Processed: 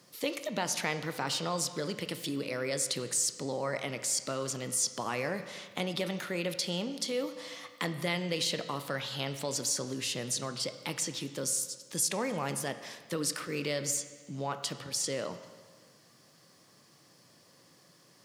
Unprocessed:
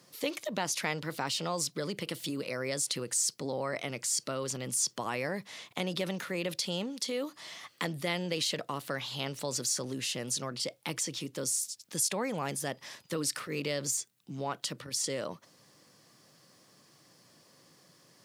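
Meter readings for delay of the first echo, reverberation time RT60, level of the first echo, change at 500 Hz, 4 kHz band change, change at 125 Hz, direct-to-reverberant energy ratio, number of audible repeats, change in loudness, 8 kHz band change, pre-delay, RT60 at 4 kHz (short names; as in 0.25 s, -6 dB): none, 1.6 s, none, +1.0 dB, +0.5 dB, +0.5 dB, 9.0 dB, none, +0.5 dB, 0.0 dB, 18 ms, 1.5 s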